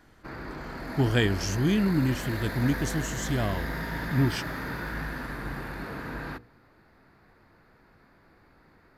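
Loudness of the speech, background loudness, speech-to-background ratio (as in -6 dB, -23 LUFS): -28.0 LUFS, -35.0 LUFS, 7.0 dB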